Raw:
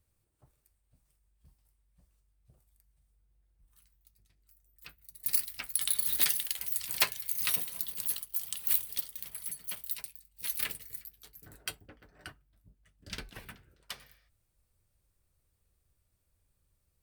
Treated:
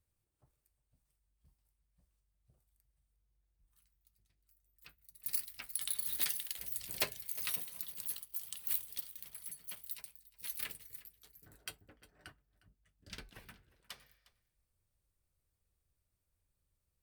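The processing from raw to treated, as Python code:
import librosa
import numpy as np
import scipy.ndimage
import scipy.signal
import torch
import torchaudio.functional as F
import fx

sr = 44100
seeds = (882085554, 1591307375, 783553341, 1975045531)

y = fx.low_shelf_res(x, sr, hz=730.0, db=7.0, q=1.5, at=(6.58, 7.24))
y = y + 10.0 ** (-20.0 / 20.0) * np.pad(y, (int(357 * sr / 1000.0), 0))[:len(y)]
y = F.gain(torch.from_numpy(y), -7.5).numpy()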